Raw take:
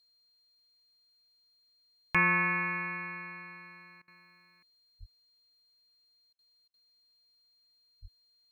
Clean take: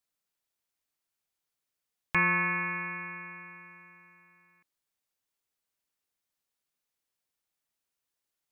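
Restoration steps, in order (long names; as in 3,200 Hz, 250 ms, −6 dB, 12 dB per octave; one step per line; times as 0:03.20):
notch filter 4,200 Hz, Q 30
high-pass at the plosives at 0:04.99/0:08.01
repair the gap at 0:04.02/0:06.33/0:06.68, 57 ms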